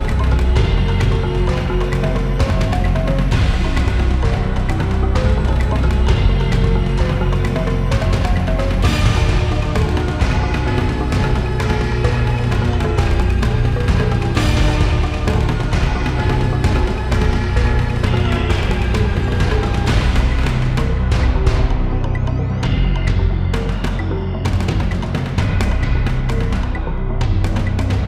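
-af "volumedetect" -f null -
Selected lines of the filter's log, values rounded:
mean_volume: -15.2 dB
max_volume: -1.2 dB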